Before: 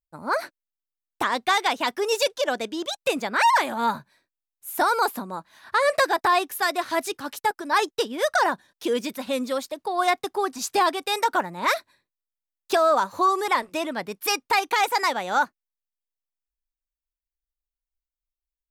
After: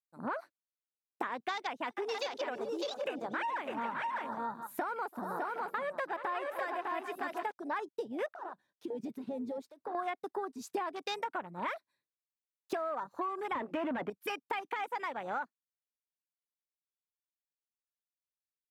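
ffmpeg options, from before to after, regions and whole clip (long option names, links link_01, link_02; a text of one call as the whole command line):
ffmpeg -i in.wav -filter_complex "[0:a]asettb=1/sr,asplit=3[link_01][link_02][link_03];[link_01]atrim=end=1.544[link_04];[link_02]atrim=start=1.54:end=7.52,asetpts=PTS-STARTPTS,afade=type=in:duration=0.004:curve=qsin,afade=type=out:start_time=5.976:duration=0.004:curve=qsin,acompressor=mode=upward:threshold=-37dB:ratio=2.5:attack=3.2:release=140:knee=2.83:detection=peak,aecho=1:1:331|428|576|604|763:0.112|0.251|0.1|0.596|0.168,atrim=end_sample=263718[link_05];[link_03]atrim=start=7.516[link_06];[link_04][link_05]acrossfade=duration=0.004:curve1=hsin:curve2=qsin[link_07];[link_07][link_06]acrossfade=duration=0.004:curve1=qsin:curve2=hsin,asettb=1/sr,asplit=3[link_08][link_09][link_10];[link_08]atrim=end=8.264[link_11];[link_09]atrim=start=8.26:end=9.95,asetpts=PTS-STARTPTS,afade=type=in:duration=0.004:curve=qsin,afade=type=out:start_time=1.686:duration=0.004:curve=qsin,highshelf=frequency=3000:gain=-9,acompressor=threshold=-33dB:ratio=6:attack=3.2:release=140:knee=1:detection=peak,asoftclip=type=hard:threshold=-31.5dB[link_12];[link_10]atrim=start=9.946[link_13];[link_11][link_12]acrossfade=duration=0.004:curve1=hsin:curve2=qsin[link_14];[link_14][link_13]acrossfade=duration=0.004:curve1=qsin:curve2=hsin,asettb=1/sr,asplit=3[link_15][link_16][link_17];[link_15]atrim=end=13.524[link_18];[link_16]atrim=start=13.52:end=14.1,asetpts=PTS-STARTPTS,afade=type=in:duration=0.004:curve=qsin,afade=type=out:start_time=0.576:duration=0.004:curve=qsin,equalizer=frequency=240:width=1.4:gain=6.5,asplit=2[link_19][link_20];[link_20]highpass=frequency=720:poles=1,volume=27dB,asoftclip=type=tanh:threshold=-11dB[link_21];[link_19][link_21]amix=inputs=2:normalize=0,lowpass=frequency=1300:poles=1,volume=-6dB[link_22];[link_17]atrim=start=14.096[link_23];[link_18][link_22]acrossfade=duration=0.004:curve1=hsin:curve2=qsin[link_24];[link_24][link_23]acrossfade=duration=0.004:curve1=qsin:curve2=hsin,afwtdn=0.0355,highpass=98,acompressor=threshold=-34dB:ratio=8" out.wav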